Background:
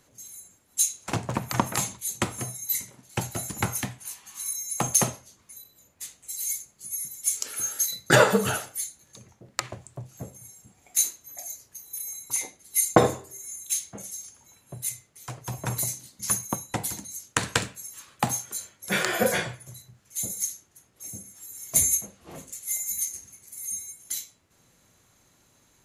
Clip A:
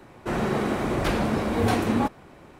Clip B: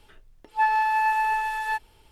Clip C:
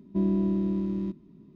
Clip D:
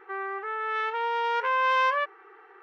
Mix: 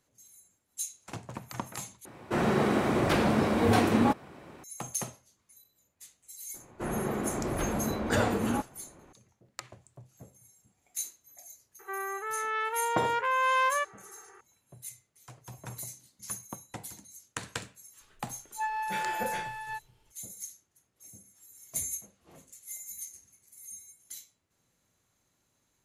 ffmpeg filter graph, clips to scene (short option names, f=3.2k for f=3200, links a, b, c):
-filter_complex "[1:a]asplit=2[a][b];[0:a]volume=-12.5dB[c];[a]highpass=85[d];[b]lowpass=f=2.2k:p=1[e];[c]asplit=2[f][g];[f]atrim=end=2.054[h];[d]atrim=end=2.59,asetpts=PTS-STARTPTS,volume=-0.5dB[i];[g]atrim=start=4.636[j];[e]atrim=end=2.59,asetpts=PTS-STARTPTS,volume=-6.5dB,afade=t=in:d=0.004:c=hsin,afade=t=out:st=2.586:d=0.004:c=hsin,adelay=6540[k];[4:a]atrim=end=2.62,asetpts=PTS-STARTPTS,volume=-2.5dB,afade=t=in:d=0.004:c=hsin,afade=t=out:st=2.616:d=0.004:c=hsin,adelay=11790[l];[2:a]atrim=end=2.11,asetpts=PTS-STARTPTS,volume=-11dB,afade=t=in:d=0.004:c=hsin,afade=t=out:st=2.106:d=0.004:c=hsin,adelay=18010[m];[h][i]acrossfade=d=0.004:c1=hsin:c2=hsin[n];[n][j]acrossfade=d=0.004:c1=hsin:c2=hsin[o];[o][k][l][m]amix=inputs=4:normalize=0"